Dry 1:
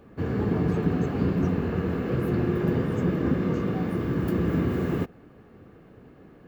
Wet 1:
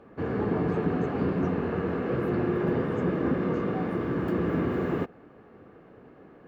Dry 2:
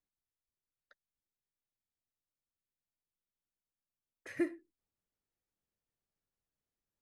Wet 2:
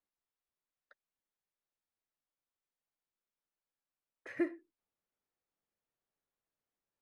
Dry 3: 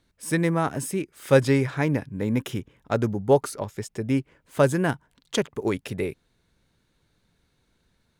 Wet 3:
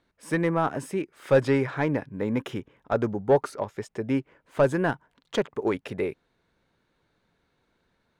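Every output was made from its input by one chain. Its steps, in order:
mid-hump overdrive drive 15 dB, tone 1,000 Hz, clips at −5 dBFS
level −3 dB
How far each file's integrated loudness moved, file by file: −2.0, 0.0, −1.5 LU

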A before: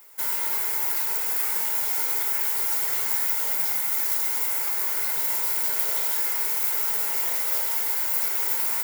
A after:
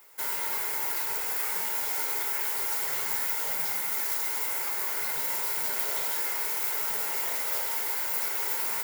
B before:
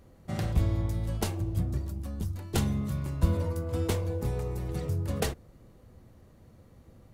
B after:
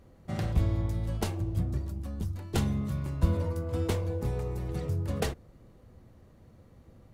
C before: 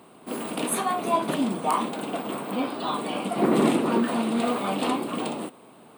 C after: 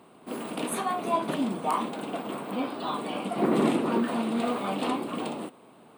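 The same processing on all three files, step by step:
high-shelf EQ 6,200 Hz −5.5 dB
normalise the peak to −12 dBFS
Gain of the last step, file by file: 0.0, −0.5, −3.0 decibels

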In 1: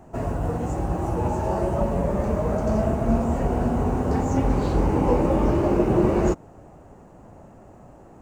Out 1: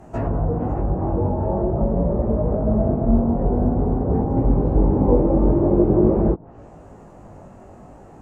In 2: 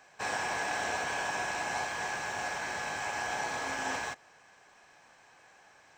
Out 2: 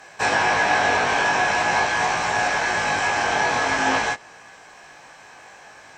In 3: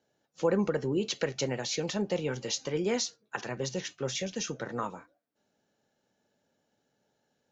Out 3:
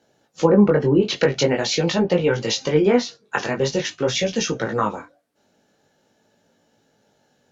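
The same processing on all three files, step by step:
treble cut that deepens with the level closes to 630 Hz, closed at −20.5 dBFS
chorus effect 0.46 Hz, delay 17.5 ms, depth 3.6 ms
loudness normalisation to −20 LKFS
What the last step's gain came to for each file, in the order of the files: +7.0, +17.0, +16.0 decibels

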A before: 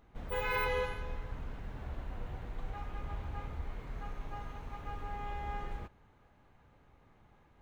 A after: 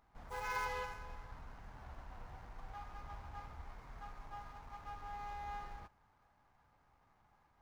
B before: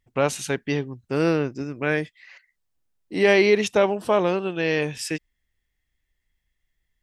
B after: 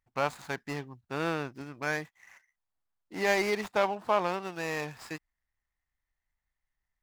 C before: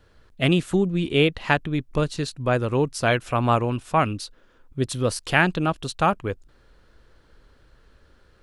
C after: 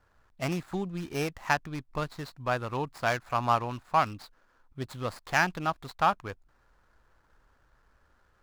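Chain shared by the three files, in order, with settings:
running median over 15 samples
low shelf with overshoot 620 Hz −7.5 dB, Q 1.5
level −3.5 dB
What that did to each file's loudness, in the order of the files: −7.0, −9.0, −7.5 LU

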